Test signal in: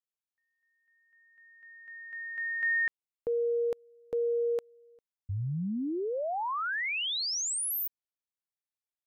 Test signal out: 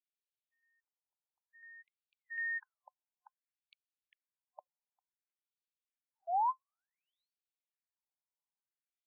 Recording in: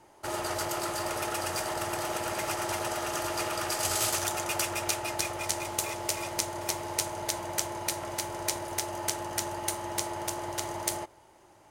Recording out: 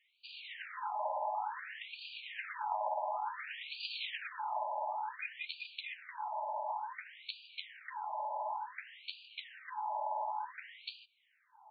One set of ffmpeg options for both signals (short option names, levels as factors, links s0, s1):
-af "superequalizer=9b=1.78:10b=0.398,afftfilt=real='re*between(b*sr/4096,500,6700)':imag='im*between(b*sr/4096,500,6700)':win_size=4096:overlap=0.75,afftfilt=real='re*between(b*sr/1024,740*pow(3400/740,0.5+0.5*sin(2*PI*0.56*pts/sr))/1.41,740*pow(3400/740,0.5+0.5*sin(2*PI*0.56*pts/sr))*1.41)':imag='im*between(b*sr/1024,740*pow(3400/740,0.5+0.5*sin(2*PI*0.56*pts/sr))/1.41,740*pow(3400/740,0.5+0.5*sin(2*PI*0.56*pts/sr))*1.41)':win_size=1024:overlap=0.75,volume=0.75"